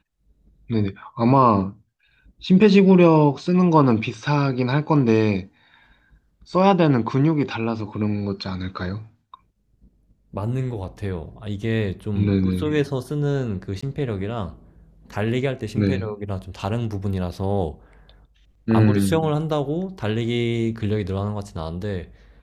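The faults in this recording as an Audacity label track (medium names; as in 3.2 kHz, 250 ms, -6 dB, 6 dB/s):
13.810000	13.820000	dropout 15 ms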